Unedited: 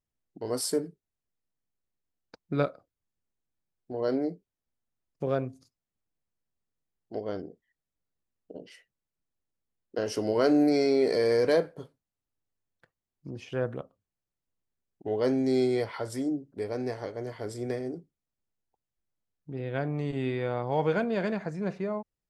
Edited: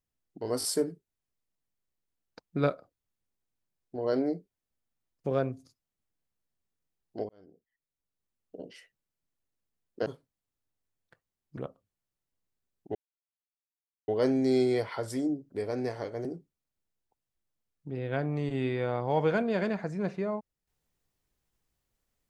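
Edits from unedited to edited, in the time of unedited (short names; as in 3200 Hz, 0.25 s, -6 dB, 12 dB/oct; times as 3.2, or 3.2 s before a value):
0.59 stutter 0.02 s, 3 plays
7.25–8.53 fade in
10.02–11.77 cut
13.28–13.72 cut
15.1 insert silence 1.13 s
17.27–17.87 cut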